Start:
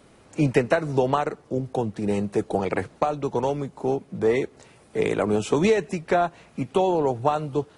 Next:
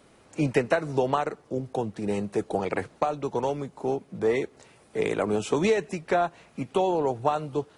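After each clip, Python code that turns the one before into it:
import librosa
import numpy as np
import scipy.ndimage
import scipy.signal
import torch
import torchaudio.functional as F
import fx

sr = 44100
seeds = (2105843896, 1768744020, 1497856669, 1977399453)

y = fx.low_shelf(x, sr, hz=250.0, db=-4.0)
y = y * 10.0 ** (-2.0 / 20.0)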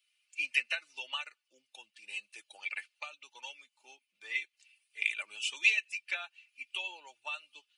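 y = fx.bin_expand(x, sr, power=1.5)
y = fx.highpass_res(y, sr, hz=2600.0, q=6.3)
y = y + 0.48 * np.pad(y, (int(3.4 * sr / 1000.0), 0))[:len(y)]
y = y * 10.0 ** (-2.5 / 20.0)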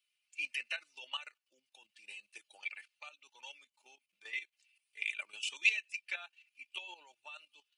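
y = fx.level_steps(x, sr, step_db=12)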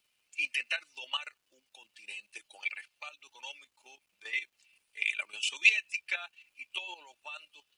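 y = fx.dmg_crackle(x, sr, seeds[0], per_s=500.0, level_db=-72.0)
y = y * 10.0 ** (6.0 / 20.0)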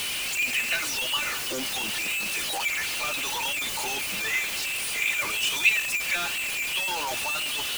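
y = x + 0.5 * 10.0 ** (-23.5 / 20.0) * np.sign(x)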